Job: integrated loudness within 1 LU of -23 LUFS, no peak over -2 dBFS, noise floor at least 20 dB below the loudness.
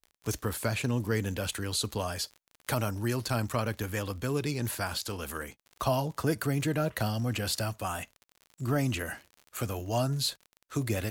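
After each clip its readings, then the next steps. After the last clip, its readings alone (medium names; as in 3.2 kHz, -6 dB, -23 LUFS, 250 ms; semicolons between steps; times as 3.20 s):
tick rate 45 per s; loudness -32.0 LUFS; peak level -15.0 dBFS; loudness target -23.0 LUFS
-> de-click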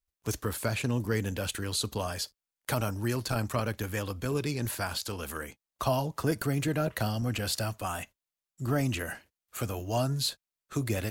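tick rate 0.72 per s; loudness -32.0 LUFS; peak level -15.0 dBFS; loudness target -23.0 LUFS
-> trim +9 dB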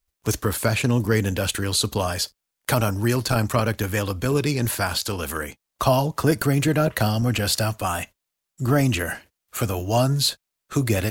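loudness -23.0 LUFS; peak level -6.0 dBFS; noise floor -82 dBFS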